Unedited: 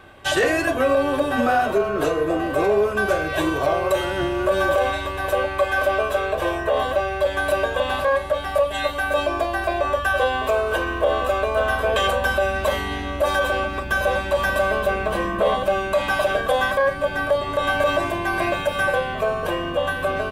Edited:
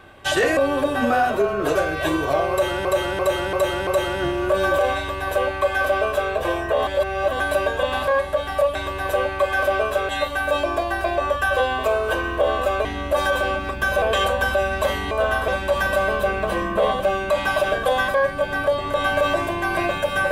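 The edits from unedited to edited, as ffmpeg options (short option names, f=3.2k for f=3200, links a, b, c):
-filter_complex "[0:a]asplit=15[a][b][c][d][e][f][g][h][i][j][k][l][m][n][o];[a]atrim=end=0.572[p];[b]atrim=start=0.928:end=2.112[q];[c]atrim=start=3.078:end=4.182[r];[d]atrim=start=3.838:end=4.182[s];[e]atrim=start=3.838:end=4.182[t];[f]atrim=start=3.838:end=4.182[u];[g]atrim=start=3.838:end=6.842[v];[h]atrim=start=6.838:end=7.372,asetpts=PTS-STARTPTS,areverse[w];[i]atrim=start=7.368:end=8.722[x];[j]atrim=start=4.938:end=6.282[y];[k]atrim=start=8.718:end=11.482[z];[l]atrim=start=12.938:end=14.112[aa];[m]atrim=start=11.848:end=12.942[ab];[n]atrim=start=11.478:end=11.852[ac];[o]atrim=start=14.108[ad];[p][q]acrossfade=d=0.004:c1=hsin:c2=hsin[ae];[ae][r]acrossfade=d=0.004:c1=hsin:c2=hsin[af];[af][s]acrossfade=d=0.004:c1=hsin:c2=hsin[ag];[ag][t]acrossfade=d=0.004:c1=hsin:c2=hsin[ah];[ah][u]acrossfade=d=0.004:c1=hsin:c2=hsin[ai];[ai][v]acrossfade=d=0.004:c1=hsin:c2=hsin[aj];[aj][w]acrossfade=d=0.004:c1=hsin:c2=hsin[ak];[ak][x]acrossfade=d=0.004:c1=hsin:c2=hsin[al];[al][y]acrossfade=d=0.004:c1=hsin:c2=hsin[am];[am][z]acrossfade=d=0.004:c1=hsin:c2=hsin[an];[an][aa]acrossfade=d=0.004:c1=hsin:c2=hsin[ao];[ao][ab]acrossfade=d=0.004:c1=hsin:c2=hsin[ap];[ap][ac]acrossfade=d=0.004:c1=hsin:c2=hsin[aq];[aq][ad]acrossfade=d=0.004:c1=hsin:c2=hsin"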